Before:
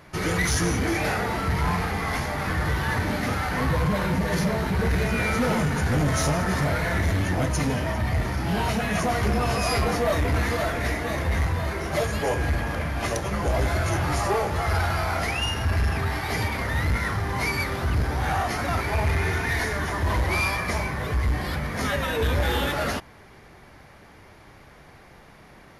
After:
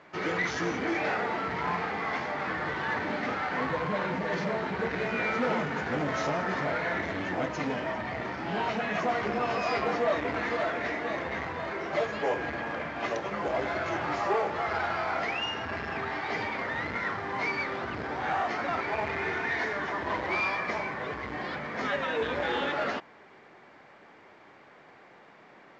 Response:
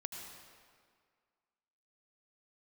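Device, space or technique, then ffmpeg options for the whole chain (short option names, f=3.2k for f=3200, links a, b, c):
telephone: -af "highpass=270,lowpass=3.1k,volume=-2.5dB" -ar 16000 -c:a pcm_mulaw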